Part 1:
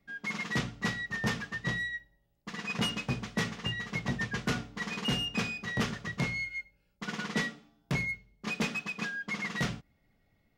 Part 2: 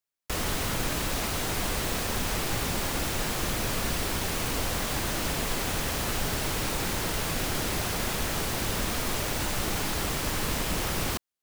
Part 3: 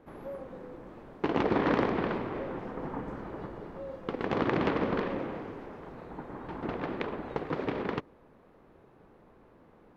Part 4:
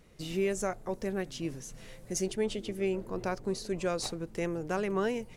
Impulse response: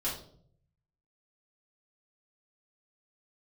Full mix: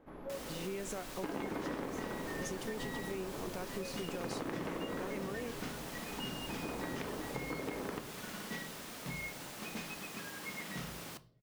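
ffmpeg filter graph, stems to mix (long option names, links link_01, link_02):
-filter_complex "[0:a]adelay=1150,volume=-15dB,asplit=2[link_01][link_02];[link_02]volume=-5.5dB[link_03];[1:a]highpass=180,volume=-17dB,asplit=2[link_04][link_05];[link_05]volume=-17dB[link_06];[2:a]volume=-6.5dB,asplit=2[link_07][link_08];[link_08]volume=-8.5dB[link_09];[3:a]alimiter=limit=-24dB:level=0:latency=1,adelay=300,volume=-4.5dB[link_10];[4:a]atrim=start_sample=2205[link_11];[link_03][link_06][link_09]amix=inputs=3:normalize=0[link_12];[link_12][link_11]afir=irnorm=-1:irlink=0[link_13];[link_01][link_04][link_07][link_10][link_13]amix=inputs=5:normalize=0,acompressor=threshold=-36dB:ratio=6"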